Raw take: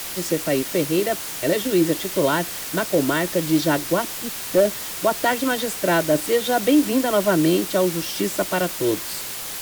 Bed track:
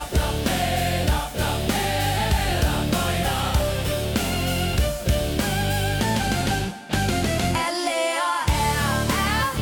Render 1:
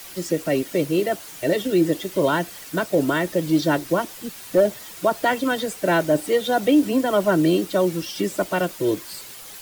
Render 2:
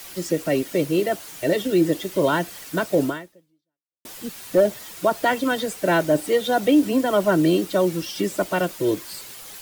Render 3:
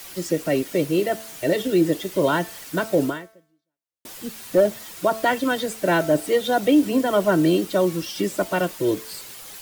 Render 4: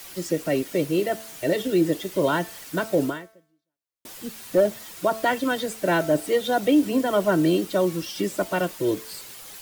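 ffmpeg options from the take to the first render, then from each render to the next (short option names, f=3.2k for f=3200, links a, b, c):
-af "afftdn=nr=10:nf=-31"
-filter_complex "[0:a]asplit=2[a][b];[a]atrim=end=4.05,asetpts=PTS-STARTPTS,afade=t=out:st=3.06:d=0.99:c=exp[c];[b]atrim=start=4.05,asetpts=PTS-STARTPTS,afade=t=in:d=0.004:c=hsin[d];[c][d]concat=n=2:v=0:a=1"
-af "bandreject=f=221.7:t=h:w=4,bandreject=f=443.4:t=h:w=4,bandreject=f=665.1:t=h:w=4,bandreject=f=886.8:t=h:w=4,bandreject=f=1.1085k:t=h:w=4,bandreject=f=1.3302k:t=h:w=4,bandreject=f=1.5519k:t=h:w=4,bandreject=f=1.7736k:t=h:w=4,bandreject=f=1.9953k:t=h:w=4,bandreject=f=2.217k:t=h:w=4,bandreject=f=2.4387k:t=h:w=4,bandreject=f=2.6604k:t=h:w=4,bandreject=f=2.8821k:t=h:w=4,bandreject=f=3.1038k:t=h:w=4,bandreject=f=3.3255k:t=h:w=4,bandreject=f=3.5472k:t=h:w=4,bandreject=f=3.7689k:t=h:w=4,bandreject=f=3.9906k:t=h:w=4,bandreject=f=4.2123k:t=h:w=4,bandreject=f=4.434k:t=h:w=4,bandreject=f=4.6557k:t=h:w=4,bandreject=f=4.8774k:t=h:w=4,bandreject=f=5.0991k:t=h:w=4,bandreject=f=5.3208k:t=h:w=4,bandreject=f=5.5425k:t=h:w=4,bandreject=f=5.7642k:t=h:w=4,bandreject=f=5.9859k:t=h:w=4,bandreject=f=6.2076k:t=h:w=4,bandreject=f=6.4293k:t=h:w=4,bandreject=f=6.651k:t=h:w=4,bandreject=f=6.8727k:t=h:w=4,bandreject=f=7.0944k:t=h:w=4,bandreject=f=7.3161k:t=h:w=4"
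-af "volume=-2dB"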